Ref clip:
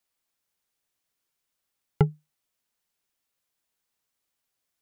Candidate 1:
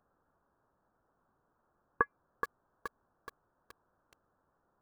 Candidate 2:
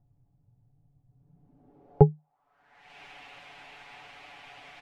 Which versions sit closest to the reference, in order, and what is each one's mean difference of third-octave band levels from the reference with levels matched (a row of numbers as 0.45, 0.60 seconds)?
2, 1; 3.5, 7.5 decibels